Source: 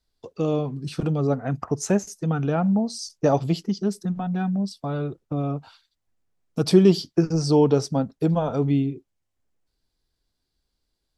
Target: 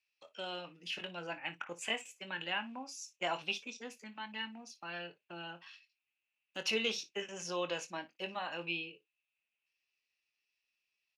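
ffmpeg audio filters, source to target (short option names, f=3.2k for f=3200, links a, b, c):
-filter_complex "[0:a]bandpass=f=2.2k:t=q:w=12:csg=0,asetrate=52444,aresample=44100,atempo=0.840896,asplit=2[a][b];[b]aecho=0:1:23|58:0.316|0.133[c];[a][c]amix=inputs=2:normalize=0,volume=15.5dB"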